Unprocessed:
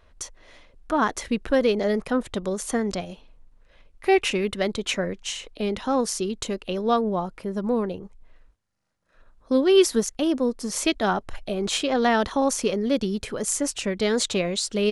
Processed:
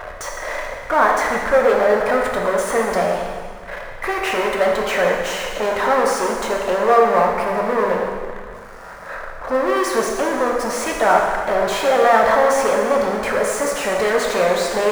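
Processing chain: power-law waveshaper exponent 0.35; high-order bell 980 Hz +14.5 dB 2.5 oct; plate-style reverb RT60 1.9 s, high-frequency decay 0.95×, DRR -0.5 dB; trim -15 dB

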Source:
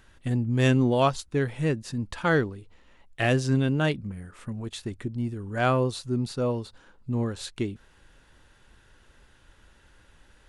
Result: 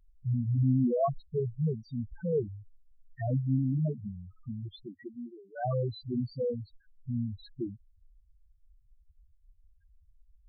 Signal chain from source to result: 4.86–5.61 s: high-pass 210 Hz -> 680 Hz 12 dB/octave; loudest bins only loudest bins 2

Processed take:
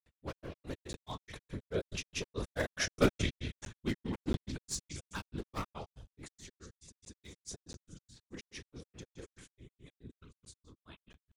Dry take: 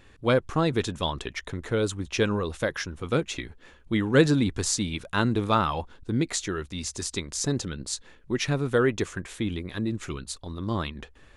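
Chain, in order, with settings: one-sided wavefolder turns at -18.5 dBFS; Doppler pass-by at 2.97 s, 9 m/s, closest 3.1 m; repeats whose band climbs or falls 128 ms, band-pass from 3.1 kHz, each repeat 0.7 oct, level -10.5 dB; in parallel at +1 dB: compression, threshold -47 dBFS, peak gain reduction 24 dB; on the sum: treble shelf 7.2 kHz +8 dB; on a send at -6 dB: reverberation RT60 0.65 s, pre-delay 4 ms; on the sum: whisper effect; peaking EQ 72 Hz +7 dB 1.3 oct; granulator 117 ms, grains 4.7 per s, pitch spread up and down by 0 st; crackling interface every 0.68 s, samples 512, zero, from 0.93 s; decay stretcher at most 40 dB/s; trim -1.5 dB

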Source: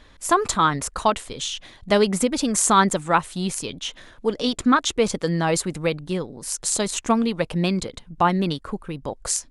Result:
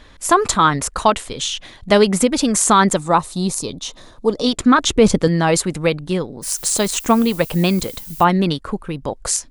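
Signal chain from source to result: 2.99–4.46 s: time-frequency box 1.3–3.5 kHz -9 dB; 4.78–5.28 s: bass shelf 400 Hz +9.5 dB; 6.42–8.23 s: added noise violet -41 dBFS; loudness maximiser +6.5 dB; trim -1 dB

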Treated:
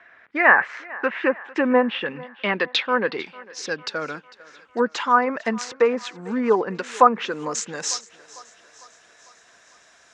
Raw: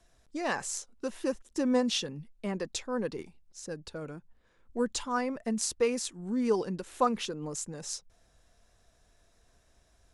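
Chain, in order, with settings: high-pass 200 Hz 12 dB/octave; low-pass that closes with the level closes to 1.1 kHz, closed at -26 dBFS; peaking EQ 1.7 kHz +15 dB 2.3 oct; low-pass sweep 2 kHz -> 7 kHz, 0.82–4.61 s; thinning echo 450 ms, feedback 58%, high-pass 340 Hz, level -20 dB; trim +5.5 dB

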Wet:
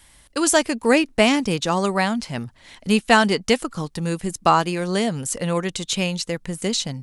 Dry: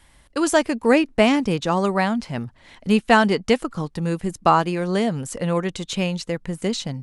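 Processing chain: treble shelf 3.2 kHz +10 dB; trim -1 dB

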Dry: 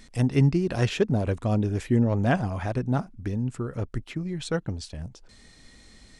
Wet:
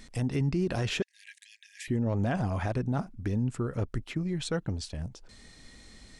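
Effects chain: peak limiter -20.5 dBFS, peak gain reduction 10 dB; 1.02–1.88 s: brick-wall FIR high-pass 1.6 kHz

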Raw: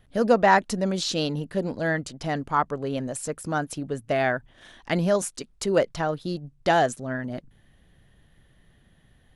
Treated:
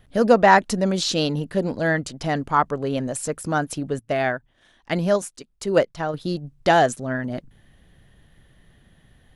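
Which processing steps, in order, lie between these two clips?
3.99–6.14 s: upward expansion 1.5:1, over -41 dBFS; trim +4 dB

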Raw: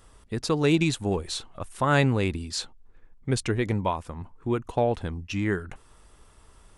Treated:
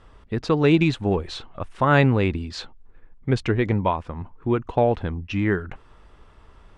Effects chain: low-pass 3.1 kHz 12 dB/octave; trim +4.5 dB

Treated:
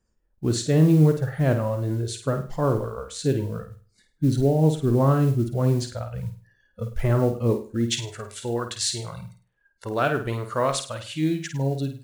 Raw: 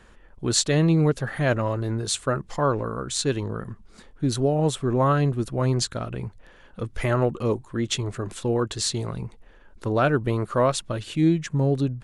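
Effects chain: spectral noise reduction 23 dB; tilt shelf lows +6.5 dB, about 710 Hz, from 7.86 s lows -3 dB; modulation noise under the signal 31 dB; flutter echo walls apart 8.8 m, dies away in 0.38 s; trim -2.5 dB

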